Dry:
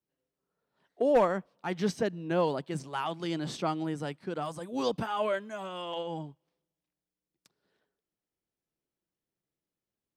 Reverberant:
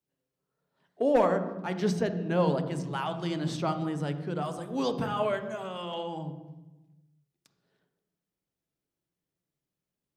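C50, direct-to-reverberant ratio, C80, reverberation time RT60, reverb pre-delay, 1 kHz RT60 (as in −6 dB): 10.0 dB, 8.0 dB, 12.0 dB, 1.1 s, 3 ms, 1.0 s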